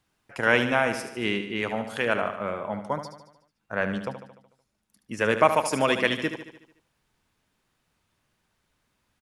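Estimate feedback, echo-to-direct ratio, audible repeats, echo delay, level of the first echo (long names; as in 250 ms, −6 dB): 56%, −8.0 dB, 6, 74 ms, −9.5 dB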